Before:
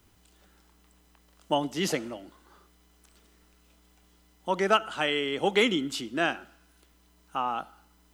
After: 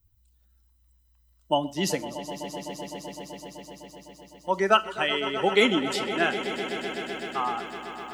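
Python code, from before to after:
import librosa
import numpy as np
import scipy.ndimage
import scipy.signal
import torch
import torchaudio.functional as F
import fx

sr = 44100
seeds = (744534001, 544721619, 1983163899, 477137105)

p1 = fx.bin_expand(x, sr, power=1.5)
p2 = p1 + fx.echo_swell(p1, sr, ms=127, loudest=5, wet_db=-15, dry=0)
p3 = fx.rev_schroeder(p2, sr, rt60_s=0.3, comb_ms=29, drr_db=17.5)
y = p3 * 10.0 ** (4.0 / 20.0)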